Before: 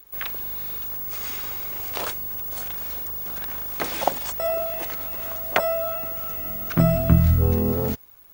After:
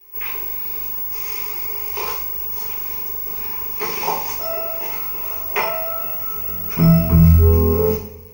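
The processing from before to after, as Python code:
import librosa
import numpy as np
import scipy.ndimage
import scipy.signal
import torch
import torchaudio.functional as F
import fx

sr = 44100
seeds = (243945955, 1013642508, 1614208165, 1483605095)

y = fx.ripple_eq(x, sr, per_octave=0.81, db=14)
y = fx.rev_double_slope(y, sr, seeds[0], early_s=0.52, late_s=1.7, knee_db=-18, drr_db=-8.5)
y = y * librosa.db_to_amplitude(-8.0)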